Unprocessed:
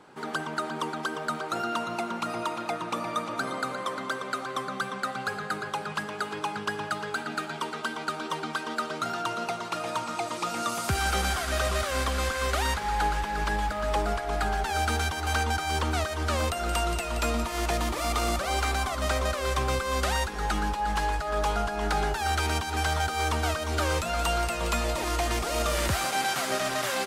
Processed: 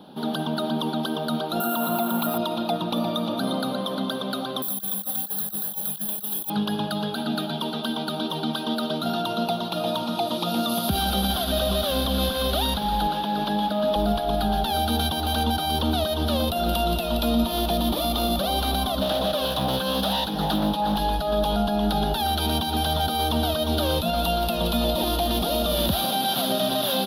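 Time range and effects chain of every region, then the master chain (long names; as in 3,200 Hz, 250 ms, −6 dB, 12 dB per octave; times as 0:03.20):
0:01.60–0:02.38: parametric band 1,300 Hz +8 dB 1.5 octaves + bad sample-rate conversion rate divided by 4×, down filtered, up hold
0:04.62–0:06.50: first-order pre-emphasis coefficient 0.8 + compressor whose output falls as the input rises −45 dBFS, ratio −0.5 + bad sample-rate conversion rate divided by 4×, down filtered, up zero stuff
0:13.07–0:13.96: high-pass filter 190 Hz + high-shelf EQ 6,700 Hz −6.5 dB
0:19.00–0:20.97: high-pass filter 68 Hz + comb filter 6.4 ms, depth 62% + highs frequency-modulated by the lows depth 0.49 ms
whole clip: drawn EQ curve 120 Hz 0 dB, 200 Hz +14 dB, 410 Hz 0 dB, 640 Hz +8 dB, 1,400 Hz +3 dB, 2,100 Hz −13 dB, 3,500 Hz +13 dB, 7,900 Hz −21 dB, 11,000 Hz +10 dB; brickwall limiter −16 dBFS; parametric band 1,200 Hz −10.5 dB 0.94 octaves; level +3.5 dB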